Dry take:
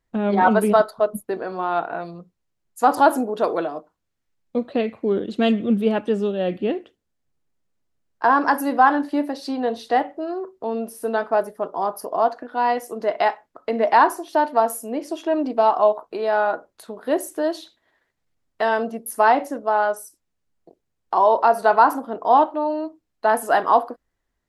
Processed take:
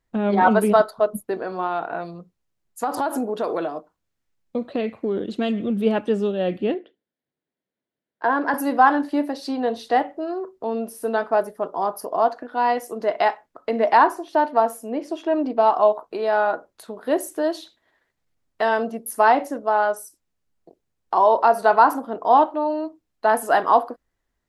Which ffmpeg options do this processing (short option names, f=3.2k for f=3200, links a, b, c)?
-filter_complex "[0:a]asettb=1/sr,asplit=3[a][b][c];[a]atrim=end=1.664[d];[b]atrim=start=1.66:end=5.78,asetpts=PTS-STARTPTS,afade=t=in:d=0.004:c=qsin,afade=t=out:st=4.116:d=0.004:c=qsin,acompressor=threshold=-19dB:ratio=6:attack=3.2:release=140:knee=1:detection=peak[e];[c]atrim=start=5.776[f];[d][e]acrossfade=d=0.004:c1=hsin:c2=qsin[g];[g][f]acrossfade=d=0.004:c1=qsin:c2=hsin,asettb=1/sr,asplit=3[h][i][j];[h]atrim=end=6.744[k];[i]atrim=start=6.74:end=8.54,asetpts=PTS-STARTPTS,afade=t=in:d=0.004:c=qsin,afade=t=out:st=1.796:d=0.004:c=qsin,highpass=230,equalizer=f=830:t=q:w=4:g=-5,equalizer=f=1.2k:t=q:w=4:g=-9,equalizer=f=2.6k:t=q:w=4:g=-7,lowpass=f=3.7k:w=0.5412,lowpass=f=3.7k:w=1.3066[l];[j]atrim=start=8.536[m];[k][l]acrossfade=d=0.004:c1=hsin:c2=qsin[n];[n][m]acrossfade=d=0.004:c1=qsin:c2=hsin,asettb=1/sr,asplit=3[o][p][q];[o]atrim=end=13.974[r];[p]atrim=start=13.97:end=15.67,asetpts=PTS-STARTPTS,afade=t=in:d=0.004:c=qsin,afade=t=out:st=1.696:d=0.004:c=qsin,highshelf=f=5.9k:g=-10.5[s];[q]atrim=start=15.666[t];[r][s]acrossfade=d=0.004:c1=hsin:c2=qsin[u];[u][t]acrossfade=d=0.004:c1=qsin:c2=hsin"